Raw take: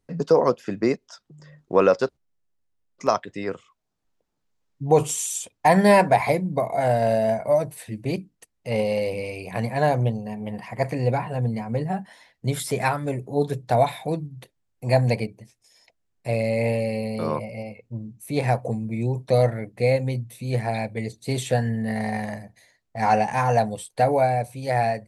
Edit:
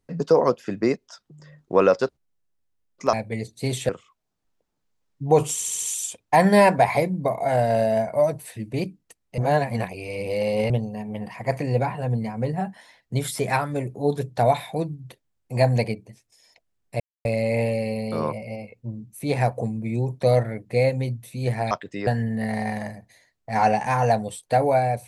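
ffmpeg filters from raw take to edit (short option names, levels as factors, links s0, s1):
-filter_complex "[0:a]asplit=12[s0][s1][s2][s3][s4][s5][s6][s7][s8][s9][s10][s11];[s0]atrim=end=3.132[s12];[s1]atrim=start=20.778:end=21.542[s13];[s2]atrim=start=3.488:end=5.212[s14];[s3]atrim=start=5.138:end=5.212[s15];[s4]atrim=start=5.138:end=5.212[s16];[s5]atrim=start=5.138:end=5.212[s17];[s6]atrim=start=5.138:end=8.702[s18];[s7]atrim=start=8.698:end=10.022,asetpts=PTS-STARTPTS,areverse[s19];[s8]atrim=start=10.018:end=16.32,asetpts=PTS-STARTPTS,afade=t=out:st=6.298:d=0.004:c=hsin,apad=pad_dur=0.25[s20];[s9]atrim=start=16.32:end=20.782,asetpts=PTS-STARTPTS,afade=t=in:d=0.004:c=hsin[s21];[s10]atrim=start=3.128:end=3.492[s22];[s11]atrim=start=21.538[s23];[s12][s13]acrossfade=d=0.004:c1=hsin:c2=hsin[s24];[s24][s14]acrossfade=d=0.004:c1=hsin:c2=hsin[s25];[s25][s15]acrossfade=d=0.004:c1=hsin:c2=hsin[s26];[s26][s16]acrossfade=d=0.004:c1=hsin:c2=hsin[s27];[s27][s17]acrossfade=d=0.004:c1=hsin:c2=hsin[s28];[s28][s18]acrossfade=d=0.004:c1=hsin:c2=hsin[s29];[s29][s19]acrossfade=d=0.004:c1=hsin:c2=hsin[s30];[s20][s21]concat=n=2:v=0:a=1[s31];[s30][s31]acrossfade=d=0.004:c1=hsin:c2=hsin[s32];[s32][s22]acrossfade=d=0.004:c1=hsin:c2=hsin[s33];[s33][s23]acrossfade=d=0.004:c1=hsin:c2=hsin"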